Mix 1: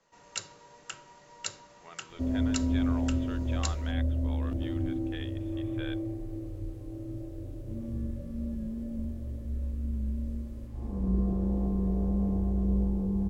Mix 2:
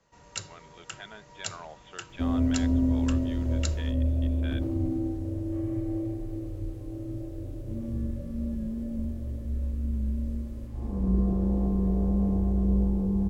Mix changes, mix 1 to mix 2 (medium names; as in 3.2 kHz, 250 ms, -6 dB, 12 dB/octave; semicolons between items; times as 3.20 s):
speech: entry -1.35 s; first sound: add peaking EQ 60 Hz +14.5 dB 2.5 oct; second sound +3.0 dB